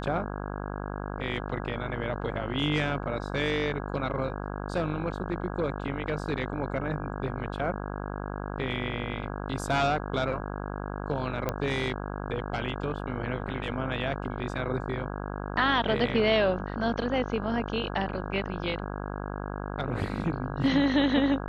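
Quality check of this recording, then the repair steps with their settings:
buzz 50 Hz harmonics 33 -35 dBFS
11.49 s: pop -14 dBFS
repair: de-click; de-hum 50 Hz, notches 33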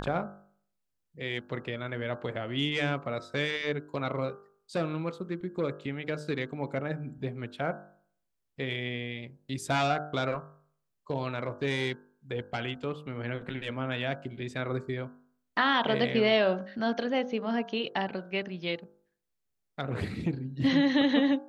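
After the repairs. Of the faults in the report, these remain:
nothing left

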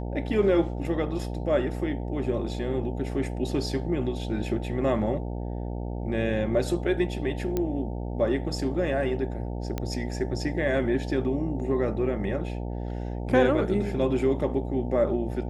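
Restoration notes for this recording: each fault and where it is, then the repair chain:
buzz 60 Hz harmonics 15 -32 dBFS
7.57 s: pop -14 dBFS
9.78 s: pop -16 dBFS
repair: de-click; de-hum 60 Hz, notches 15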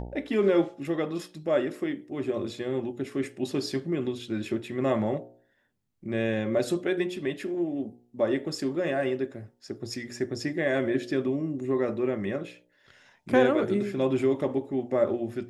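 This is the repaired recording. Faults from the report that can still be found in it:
nothing left

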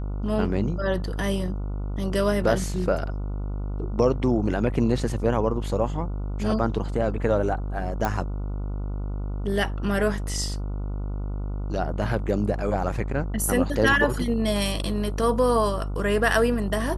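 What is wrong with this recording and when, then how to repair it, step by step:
buzz 50 Hz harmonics 29 -29 dBFS
8.05 s: pop -12 dBFS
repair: de-click; de-hum 50 Hz, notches 29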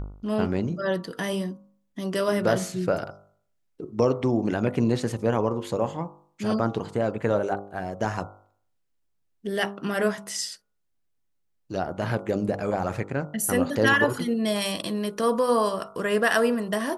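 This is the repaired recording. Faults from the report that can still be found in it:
nothing left

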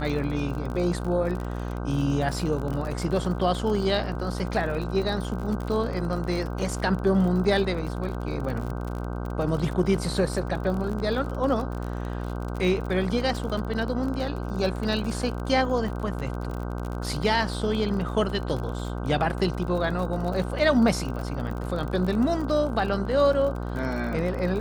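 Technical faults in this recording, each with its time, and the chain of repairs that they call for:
buzz 60 Hz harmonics 26 -31 dBFS
crackle 47 per s -31 dBFS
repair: de-click; de-hum 60 Hz, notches 26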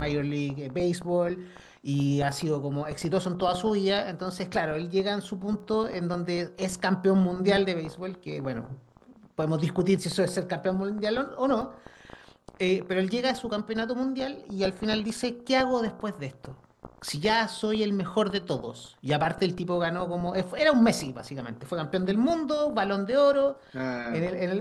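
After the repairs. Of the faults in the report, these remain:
nothing left

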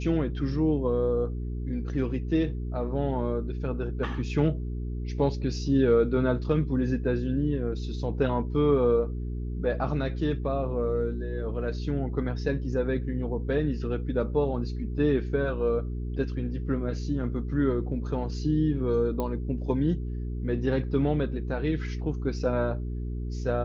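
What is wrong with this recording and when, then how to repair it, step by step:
hum 60 Hz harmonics 7 -32 dBFS
19.20 s: pop -18 dBFS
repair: de-click; de-hum 60 Hz, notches 7

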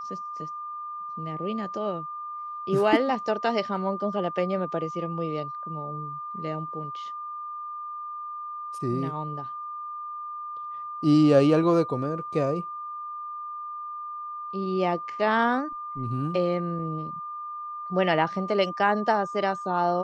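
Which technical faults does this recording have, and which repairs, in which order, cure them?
whine 1.2 kHz -33 dBFS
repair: band-stop 1.2 kHz, Q 30

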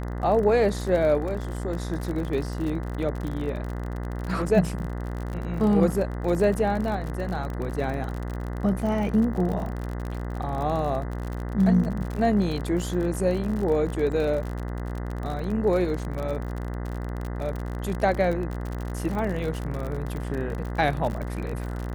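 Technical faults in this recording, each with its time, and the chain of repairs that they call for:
buzz 60 Hz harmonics 34 -31 dBFS
crackle 48 per s -30 dBFS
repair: de-click; de-hum 60 Hz, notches 34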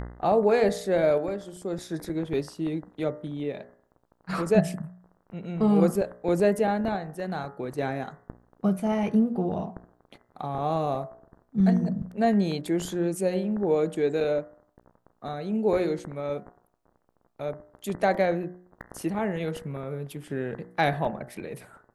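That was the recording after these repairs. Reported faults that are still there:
nothing left

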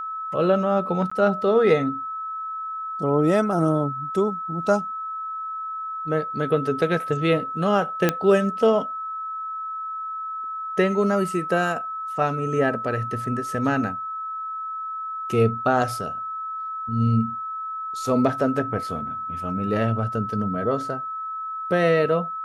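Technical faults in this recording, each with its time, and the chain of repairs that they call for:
whine 1.3 kHz -28 dBFS
1.10–1.11 s: dropout 15 ms
8.09 s: pop -5 dBFS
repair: de-click; band-stop 1.3 kHz, Q 30; interpolate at 1.10 s, 15 ms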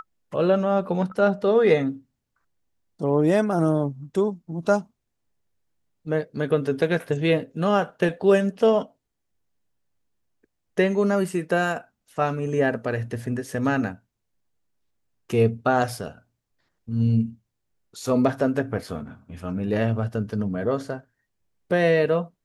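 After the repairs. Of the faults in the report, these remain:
nothing left

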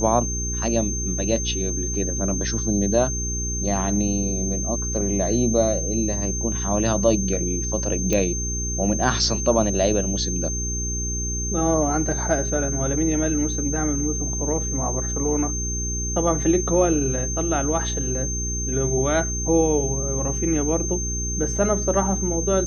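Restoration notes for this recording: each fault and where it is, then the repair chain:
hum 60 Hz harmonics 7 -28 dBFS
whine 6.3 kHz -27 dBFS
8.13 s: pop -8 dBFS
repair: de-click; de-hum 60 Hz, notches 7; band-stop 6.3 kHz, Q 30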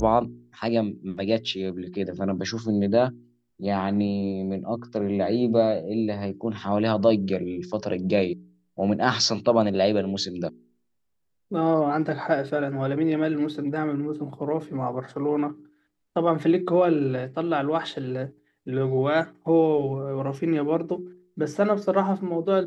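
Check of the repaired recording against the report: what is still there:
nothing left

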